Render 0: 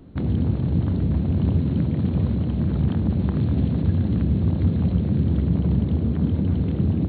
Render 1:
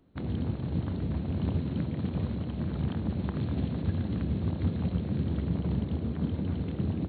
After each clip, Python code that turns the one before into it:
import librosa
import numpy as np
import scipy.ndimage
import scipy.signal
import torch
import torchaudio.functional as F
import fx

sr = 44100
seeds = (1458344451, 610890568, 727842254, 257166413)

y = fx.low_shelf(x, sr, hz=410.0, db=-8.5)
y = fx.upward_expand(y, sr, threshold_db=-46.0, expansion=1.5)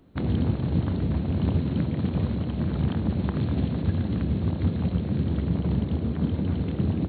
y = fx.rider(x, sr, range_db=10, speed_s=2.0)
y = F.gain(torch.from_numpy(y), 5.0).numpy()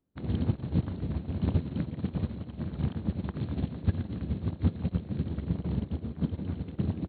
y = fx.upward_expand(x, sr, threshold_db=-36.0, expansion=2.5)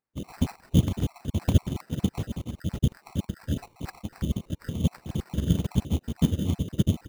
y = fx.spec_dropout(x, sr, seeds[0], share_pct=51)
y = fx.sample_hold(y, sr, seeds[1], rate_hz=3300.0, jitter_pct=0)
y = F.gain(torch.from_numpy(y), 7.5).numpy()